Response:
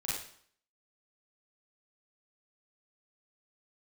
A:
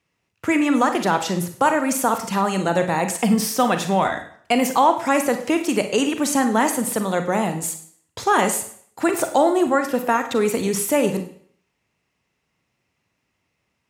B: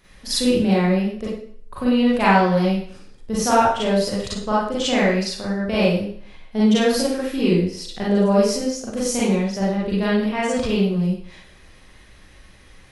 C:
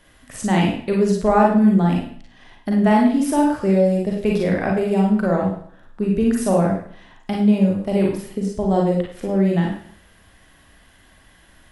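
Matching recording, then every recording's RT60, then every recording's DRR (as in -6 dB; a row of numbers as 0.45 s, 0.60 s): B; 0.60 s, 0.60 s, 0.60 s; 7.0 dB, -8.0 dB, -1.5 dB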